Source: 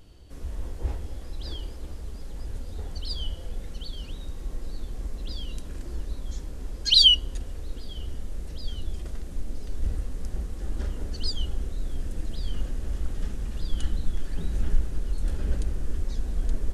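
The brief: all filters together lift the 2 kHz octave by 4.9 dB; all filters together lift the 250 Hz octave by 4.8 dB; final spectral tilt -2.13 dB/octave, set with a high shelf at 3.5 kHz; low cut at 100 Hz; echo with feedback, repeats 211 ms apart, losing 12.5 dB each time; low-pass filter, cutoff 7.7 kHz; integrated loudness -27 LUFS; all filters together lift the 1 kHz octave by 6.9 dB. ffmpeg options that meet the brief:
-af "highpass=100,lowpass=7700,equalizer=f=250:t=o:g=6,equalizer=f=1000:t=o:g=7.5,equalizer=f=2000:t=o:g=7.5,highshelf=f=3500:g=-8,aecho=1:1:211|422|633:0.237|0.0569|0.0137,volume=1.26"

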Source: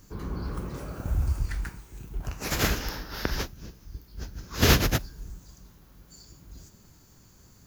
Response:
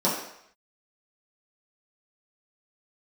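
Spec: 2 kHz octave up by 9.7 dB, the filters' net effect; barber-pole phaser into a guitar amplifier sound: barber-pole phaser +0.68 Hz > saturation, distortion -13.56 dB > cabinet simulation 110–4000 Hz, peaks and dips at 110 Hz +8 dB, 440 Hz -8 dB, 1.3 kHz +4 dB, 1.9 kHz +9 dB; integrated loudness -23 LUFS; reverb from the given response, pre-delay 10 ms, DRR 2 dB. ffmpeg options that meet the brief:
-filter_complex "[0:a]equalizer=f=2000:t=o:g=5,asplit=2[s0][s1];[1:a]atrim=start_sample=2205,adelay=10[s2];[s1][s2]afir=irnorm=-1:irlink=0,volume=0.158[s3];[s0][s3]amix=inputs=2:normalize=0,asplit=2[s4][s5];[s5]afreqshift=0.68[s6];[s4][s6]amix=inputs=2:normalize=1,asoftclip=threshold=0.133,highpass=110,equalizer=f=110:t=q:w=4:g=8,equalizer=f=440:t=q:w=4:g=-8,equalizer=f=1300:t=q:w=4:g=4,equalizer=f=1900:t=q:w=4:g=9,lowpass=f=4000:w=0.5412,lowpass=f=4000:w=1.3066,volume=2.37"

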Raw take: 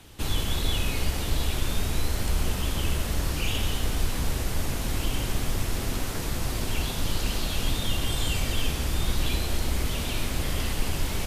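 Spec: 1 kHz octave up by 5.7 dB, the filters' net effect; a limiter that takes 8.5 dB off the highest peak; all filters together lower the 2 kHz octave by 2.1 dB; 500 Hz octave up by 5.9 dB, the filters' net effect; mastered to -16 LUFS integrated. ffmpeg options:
-af "equalizer=f=500:t=o:g=6,equalizer=f=1000:t=o:g=6.5,equalizer=f=2000:t=o:g=-5,volume=5.96,alimiter=limit=0.596:level=0:latency=1"

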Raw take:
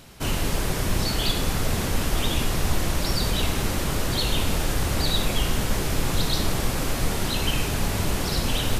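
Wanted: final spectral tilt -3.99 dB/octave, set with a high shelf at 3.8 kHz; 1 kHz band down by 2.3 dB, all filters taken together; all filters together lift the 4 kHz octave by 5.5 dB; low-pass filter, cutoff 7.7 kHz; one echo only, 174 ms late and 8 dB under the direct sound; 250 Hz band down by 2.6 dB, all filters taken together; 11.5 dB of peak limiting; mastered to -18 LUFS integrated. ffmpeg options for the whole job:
-af "lowpass=7700,equalizer=f=250:t=o:g=-3.5,equalizer=f=1000:t=o:g=-3.5,highshelf=f=3800:g=6,equalizer=f=4000:t=o:g=3.5,alimiter=limit=0.126:level=0:latency=1,aecho=1:1:174:0.398,volume=2.82"

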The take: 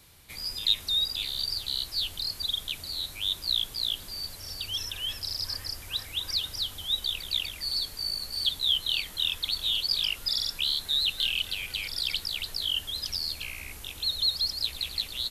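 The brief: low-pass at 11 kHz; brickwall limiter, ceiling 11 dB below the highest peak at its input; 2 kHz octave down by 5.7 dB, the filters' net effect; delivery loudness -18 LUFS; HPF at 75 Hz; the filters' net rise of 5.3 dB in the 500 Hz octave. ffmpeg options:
-af "highpass=75,lowpass=11000,equalizer=f=500:t=o:g=7,equalizer=f=2000:t=o:g=-9,volume=5.01,alimiter=limit=0.355:level=0:latency=1"

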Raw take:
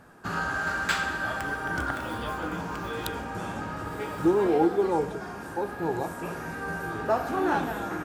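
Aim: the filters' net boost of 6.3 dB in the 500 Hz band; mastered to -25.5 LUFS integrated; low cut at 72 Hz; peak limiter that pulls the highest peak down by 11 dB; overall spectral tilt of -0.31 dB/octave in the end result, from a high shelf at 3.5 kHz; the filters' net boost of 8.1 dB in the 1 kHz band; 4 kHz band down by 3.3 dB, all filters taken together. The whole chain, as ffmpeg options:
-af "highpass=72,equalizer=f=500:t=o:g=6.5,equalizer=f=1000:t=o:g=8.5,highshelf=f=3500:g=3,equalizer=f=4000:t=o:g=-7,volume=1.06,alimiter=limit=0.178:level=0:latency=1"

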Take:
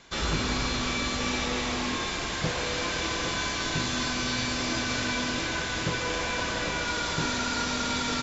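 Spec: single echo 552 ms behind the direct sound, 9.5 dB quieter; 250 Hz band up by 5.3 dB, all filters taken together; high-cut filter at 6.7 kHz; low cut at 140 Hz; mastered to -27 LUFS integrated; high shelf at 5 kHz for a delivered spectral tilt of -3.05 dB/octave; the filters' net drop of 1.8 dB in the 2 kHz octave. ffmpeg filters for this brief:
-af "highpass=140,lowpass=6700,equalizer=f=250:t=o:g=6.5,equalizer=f=2000:t=o:g=-3.5,highshelf=f=5000:g=6,aecho=1:1:552:0.335,volume=0.944"

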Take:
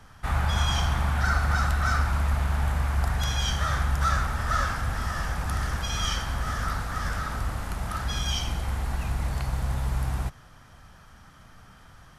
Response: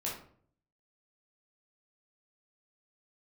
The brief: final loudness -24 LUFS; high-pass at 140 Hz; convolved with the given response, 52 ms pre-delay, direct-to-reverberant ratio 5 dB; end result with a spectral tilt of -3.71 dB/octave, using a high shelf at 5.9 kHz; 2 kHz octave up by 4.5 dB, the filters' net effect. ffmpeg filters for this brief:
-filter_complex "[0:a]highpass=140,equalizer=f=2000:t=o:g=7,highshelf=f=5900:g=-8.5,asplit=2[s0][s1];[1:a]atrim=start_sample=2205,adelay=52[s2];[s1][s2]afir=irnorm=-1:irlink=0,volume=0.422[s3];[s0][s3]amix=inputs=2:normalize=0,volume=1.5"

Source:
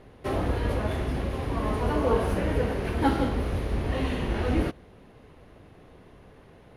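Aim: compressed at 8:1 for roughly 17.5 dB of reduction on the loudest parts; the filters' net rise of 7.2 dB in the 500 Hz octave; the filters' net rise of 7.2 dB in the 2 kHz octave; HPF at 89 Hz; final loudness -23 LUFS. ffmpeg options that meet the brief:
-af "highpass=89,equalizer=f=500:t=o:g=8,equalizer=f=2000:t=o:g=8.5,acompressor=threshold=0.0251:ratio=8,volume=4.22"

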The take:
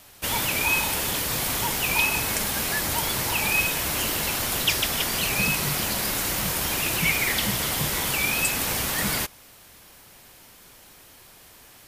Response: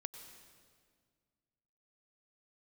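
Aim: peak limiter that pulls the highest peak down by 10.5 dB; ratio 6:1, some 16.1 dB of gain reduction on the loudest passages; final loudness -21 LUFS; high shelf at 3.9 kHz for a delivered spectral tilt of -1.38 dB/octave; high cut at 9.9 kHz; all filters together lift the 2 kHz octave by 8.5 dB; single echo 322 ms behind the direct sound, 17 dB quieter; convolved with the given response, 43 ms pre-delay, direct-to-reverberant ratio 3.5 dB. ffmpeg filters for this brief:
-filter_complex "[0:a]lowpass=9900,equalizer=f=2000:t=o:g=8.5,highshelf=f=3900:g=8,acompressor=threshold=0.0355:ratio=6,alimiter=level_in=1.06:limit=0.0631:level=0:latency=1,volume=0.944,aecho=1:1:322:0.141,asplit=2[s0][s1];[1:a]atrim=start_sample=2205,adelay=43[s2];[s1][s2]afir=irnorm=-1:irlink=0,volume=0.944[s3];[s0][s3]amix=inputs=2:normalize=0,volume=2.82"

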